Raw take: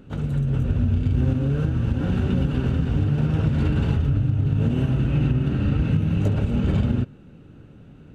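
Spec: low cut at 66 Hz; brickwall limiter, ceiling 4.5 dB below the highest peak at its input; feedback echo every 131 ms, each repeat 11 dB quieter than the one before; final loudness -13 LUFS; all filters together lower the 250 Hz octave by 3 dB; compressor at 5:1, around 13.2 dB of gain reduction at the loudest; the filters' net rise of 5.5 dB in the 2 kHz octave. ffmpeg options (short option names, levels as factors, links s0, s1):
-af "highpass=66,equalizer=f=250:t=o:g=-4.5,equalizer=f=2000:t=o:g=8,acompressor=threshold=0.02:ratio=5,alimiter=level_in=1.88:limit=0.0631:level=0:latency=1,volume=0.531,aecho=1:1:131|262|393:0.282|0.0789|0.0221,volume=17.8"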